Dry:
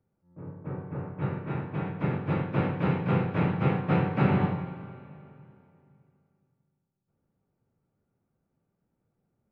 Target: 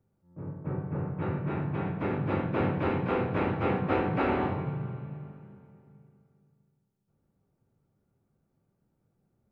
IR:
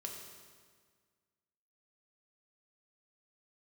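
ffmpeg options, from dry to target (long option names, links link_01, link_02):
-filter_complex "[0:a]asplit=2[link_01][link_02];[1:a]atrim=start_sample=2205,lowpass=2100,lowshelf=frequency=300:gain=10[link_03];[link_02][link_03]afir=irnorm=-1:irlink=0,volume=-9dB[link_04];[link_01][link_04]amix=inputs=2:normalize=0,afftfilt=real='re*lt(hypot(re,im),0.501)':imag='im*lt(hypot(re,im),0.501)':win_size=1024:overlap=0.75"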